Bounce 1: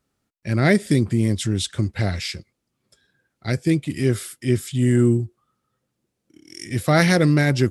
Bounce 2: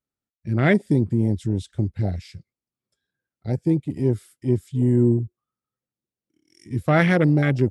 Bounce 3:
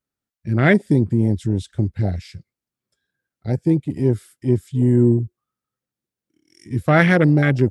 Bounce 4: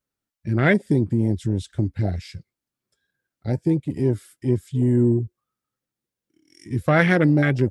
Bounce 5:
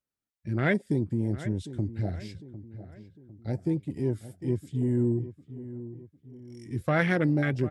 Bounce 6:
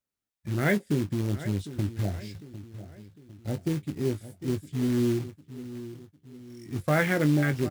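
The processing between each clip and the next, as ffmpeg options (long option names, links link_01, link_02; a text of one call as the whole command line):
ffmpeg -i in.wav -af "afwtdn=0.0631,volume=-1dB" out.wav
ffmpeg -i in.wav -af "equalizer=frequency=1600:width=3.2:gain=3,volume=3dB" out.wav
ffmpeg -i in.wav -filter_complex "[0:a]asplit=2[link_01][link_02];[link_02]acompressor=threshold=-22dB:ratio=6,volume=-2dB[link_03];[link_01][link_03]amix=inputs=2:normalize=0,flanger=delay=1.8:depth=1.8:regen=74:speed=1.3:shape=sinusoidal" out.wav
ffmpeg -i in.wav -filter_complex "[0:a]asplit=2[link_01][link_02];[link_02]adelay=753,lowpass=frequency=1900:poles=1,volume=-14dB,asplit=2[link_03][link_04];[link_04]adelay=753,lowpass=frequency=1900:poles=1,volume=0.47,asplit=2[link_05][link_06];[link_06]adelay=753,lowpass=frequency=1900:poles=1,volume=0.47,asplit=2[link_07][link_08];[link_08]adelay=753,lowpass=frequency=1900:poles=1,volume=0.47[link_09];[link_01][link_03][link_05][link_07][link_09]amix=inputs=5:normalize=0,volume=-7.5dB" out.wav
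ffmpeg -i in.wav -filter_complex "[0:a]acrusher=bits=4:mode=log:mix=0:aa=0.000001,asplit=2[link_01][link_02];[link_02]adelay=20,volume=-10dB[link_03];[link_01][link_03]amix=inputs=2:normalize=0" out.wav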